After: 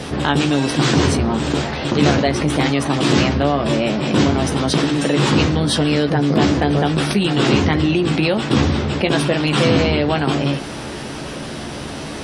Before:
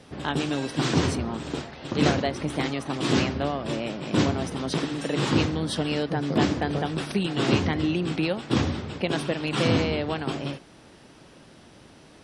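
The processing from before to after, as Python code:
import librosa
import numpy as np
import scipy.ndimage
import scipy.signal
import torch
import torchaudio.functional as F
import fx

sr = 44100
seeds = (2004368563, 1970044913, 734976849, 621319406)

y = fx.doubler(x, sr, ms=14.0, db=-7)
y = fx.env_flatten(y, sr, amount_pct=50)
y = F.gain(torch.from_numpy(y), 4.5).numpy()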